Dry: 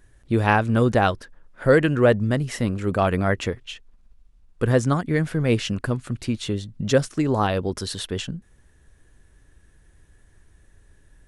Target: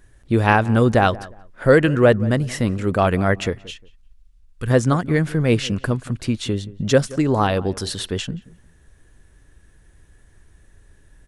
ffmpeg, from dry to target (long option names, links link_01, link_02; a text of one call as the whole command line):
ffmpeg -i in.wav -filter_complex "[0:a]asplit=3[link_01][link_02][link_03];[link_01]afade=type=out:start_time=3.63:duration=0.02[link_04];[link_02]equalizer=frequency=480:width=0.41:gain=-14.5,afade=type=in:start_time=3.63:duration=0.02,afade=type=out:start_time=4.69:duration=0.02[link_05];[link_03]afade=type=in:start_time=4.69:duration=0.02[link_06];[link_04][link_05][link_06]amix=inputs=3:normalize=0,asplit=2[link_07][link_08];[link_08]adelay=178,lowpass=frequency=1600:poles=1,volume=-19dB,asplit=2[link_09][link_10];[link_10]adelay=178,lowpass=frequency=1600:poles=1,volume=0.27[link_11];[link_07][link_09][link_11]amix=inputs=3:normalize=0,volume=3dB" out.wav